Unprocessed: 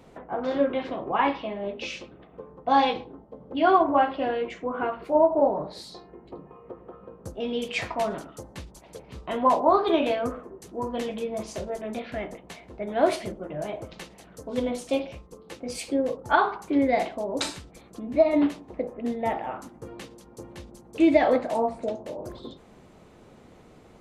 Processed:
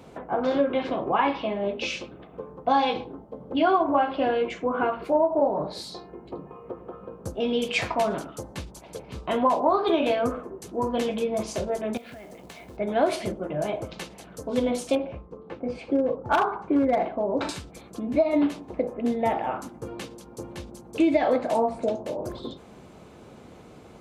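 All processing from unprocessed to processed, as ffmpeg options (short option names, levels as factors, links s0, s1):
-filter_complex "[0:a]asettb=1/sr,asplit=3[s0][s1][s2];[s0]atrim=end=11.974[s3];[s1]atrim=start=11.97:end=12.77,asetpts=PTS-STARTPTS,afade=t=in:d=0.004:c=qsin,afade=t=out:st=0.796:d=0.004:c=qsin,acompressor=threshold=0.00708:ratio=20:attack=3.2:release=140:knee=1:detection=peak,acrusher=bits=4:mode=log:mix=0:aa=0.000001[s4];[s2]atrim=start=12.766[s5];[s3][s4]acrossfade=d=0.004:c1=hsin:c2=qsin[s6];[s6][s5]acrossfade=d=0.004:c1=qsin:c2=hsin,asettb=1/sr,asplit=3[s7][s8][s9];[s7]atrim=end=14.954[s10];[s8]atrim=start=14.95:end=17.49,asetpts=PTS-STARTPTS,afade=t=in:d=0.004:c=qsin,afade=t=out:st=2.536:d=0.004:c=qsin,lowpass=1600,asoftclip=type=hard:threshold=0.15[s11];[s9]atrim=start=17.486[s12];[s10][s11]acrossfade=d=0.004:c1=hsin:c2=qsin[s13];[s13][s12]acrossfade=d=0.004:c1=qsin:c2=hsin,highpass=50,bandreject=f=1900:w=14,acompressor=threshold=0.0631:ratio=3,volume=1.68"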